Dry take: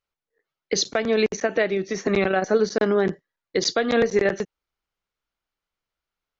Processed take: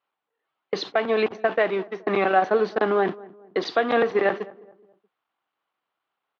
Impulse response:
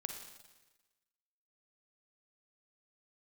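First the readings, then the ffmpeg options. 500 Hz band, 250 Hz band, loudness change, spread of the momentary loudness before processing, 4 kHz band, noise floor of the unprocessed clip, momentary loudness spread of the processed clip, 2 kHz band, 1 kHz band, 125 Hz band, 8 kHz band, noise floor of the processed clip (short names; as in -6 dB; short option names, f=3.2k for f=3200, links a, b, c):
-1.0 dB, -4.5 dB, -1.0 dB, 6 LU, -6.5 dB, under -85 dBFS, 11 LU, 0.0 dB, +6.0 dB, -6.5 dB, n/a, -84 dBFS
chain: -filter_complex "[0:a]aeval=exprs='val(0)+0.5*0.0355*sgn(val(0))':c=same,lowshelf=f=340:g=-8.5,agate=range=-44dB:threshold=-26dB:ratio=16:detection=peak,highpass=f=120:w=0.5412,highpass=f=120:w=1.3066,equalizer=f=160:t=q:w=4:g=-4,equalizer=f=310:t=q:w=4:g=4,equalizer=f=770:t=q:w=4:g=7,equalizer=f=1.1k:t=q:w=4:g=6,equalizer=f=2.2k:t=q:w=4:g=-3,lowpass=f=3.3k:w=0.5412,lowpass=f=3.3k:w=1.3066,asplit=2[a][b];[b]adelay=211,lowpass=f=910:p=1,volume=-19.5dB,asplit=2[c][d];[d]adelay=211,lowpass=f=910:p=1,volume=0.44,asplit=2[e][f];[f]adelay=211,lowpass=f=910:p=1,volume=0.44[g];[a][c][e][g]amix=inputs=4:normalize=0"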